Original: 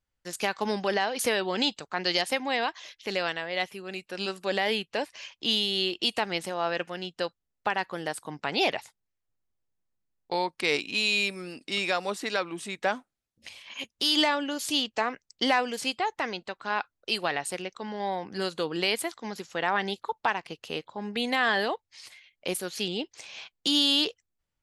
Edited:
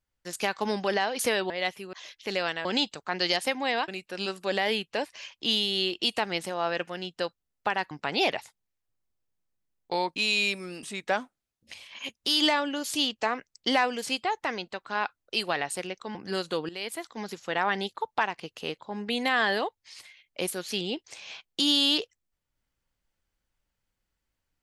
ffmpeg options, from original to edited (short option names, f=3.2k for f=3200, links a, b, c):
-filter_complex "[0:a]asplit=10[a][b][c][d][e][f][g][h][i][j];[a]atrim=end=1.502[k];[b]atrim=start=3.448:end=3.882[l];[c]atrim=start=2.728:end=3.452[m];[d]atrim=start=1.498:end=2.732[n];[e]atrim=start=3.878:end=7.912[o];[f]atrim=start=8.308:end=10.562[p];[g]atrim=start=10.918:end=11.592[q];[h]atrim=start=12.578:end=17.902[r];[i]atrim=start=18.218:end=18.76,asetpts=PTS-STARTPTS,afade=t=out:st=0.538:d=0.004:c=hsin:silence=0.149624[s];[j]atrim=start=18.76,asetpts=PTS-STARTPTS,afade=t=in:d=0.53:silence=0.149624[t];[k][l]acrossfade=d=0.004:c1=hsin:c2=hsin[u];[u][m]acrossfade=d=0.004:c1=hsin:c2=hsin[v];[v][n]acrossfade=d=0.004:c1=hsin:c2=hsin[w];[w][o]acrossfade=d=0.004:c1=hsin:c2=hsin[x];[x][p]acrossfade=d=0.004:c1=hsin:c2=hsin[y];[y][q]acrossfade=d=0.004:c1=hsin:c2=hsin[z];[z][r]acrossfade=d=0.004:c1=hsin:c2=hsin[aa];[s][t]concat=n=2:v=0:a=1[ab];[aa][ab]acrossfade=d=0.004:c1=hsin:c2=hsin"